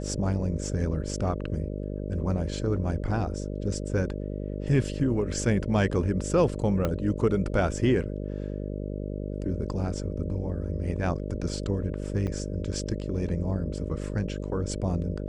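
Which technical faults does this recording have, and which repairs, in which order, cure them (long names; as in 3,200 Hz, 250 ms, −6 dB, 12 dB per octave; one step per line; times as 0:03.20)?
mains buzz 50 Hz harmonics 12 −33 dBFS
0:06.85: click −14 dBFS
0:12.27–0:12.28: drop-out 5.5 ms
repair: click removal
hum removal 50 Hz, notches 12
repair the gap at 0:12.27, 5.5 ms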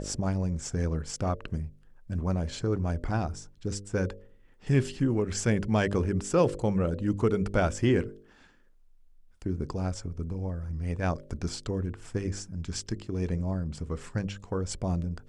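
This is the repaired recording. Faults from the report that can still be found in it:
0:06.85: click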